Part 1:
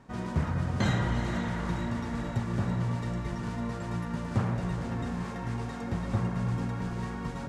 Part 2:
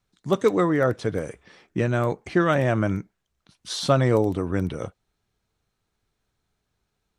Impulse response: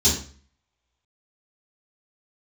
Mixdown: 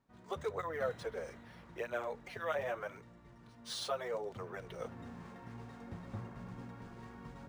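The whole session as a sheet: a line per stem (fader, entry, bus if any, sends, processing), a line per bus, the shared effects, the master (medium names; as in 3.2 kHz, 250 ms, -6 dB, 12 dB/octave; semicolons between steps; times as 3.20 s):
4.32 s -22.5 dB -> 5.06 s -13.5 dB, 0.00 s, no send, hum notches 60/120/180 Hz
-6.0 dB, 0.00 s, no send, compression 5:1, threshold -21 dBFS, peak gain reduction 7.5 dB; steep high-pass 420 Hz 48 dB/octave; cancelling through-zero flanger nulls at 0.8 Hz, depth 7 ms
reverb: none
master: decimation joined by straight lines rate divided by 3×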